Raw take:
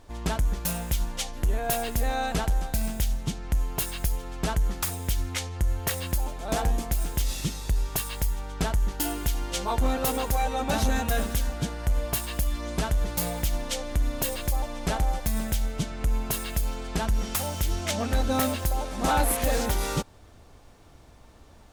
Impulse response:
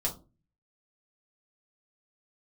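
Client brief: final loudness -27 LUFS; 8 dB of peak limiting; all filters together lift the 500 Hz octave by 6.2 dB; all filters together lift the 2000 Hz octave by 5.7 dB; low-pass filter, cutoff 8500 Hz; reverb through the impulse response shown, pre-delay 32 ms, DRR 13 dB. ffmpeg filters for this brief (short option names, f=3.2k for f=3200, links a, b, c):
-filter_complex "[0:a]lowpass=8.5k,equalizer=f=500:t=o:g=7,equalizer=f=2k:t=o:g=7,alimiter=limit=-18.5dB:level=0:latency=1,asplit=2[a][b];[1:a]atrim=start_sample=2205,adelay=32[c];[b][c]afir=irnorm=-1:irlink=0,volume=-17.5dB[d];[a][d]amix=inputs=2:normalize=0,volume=2dB"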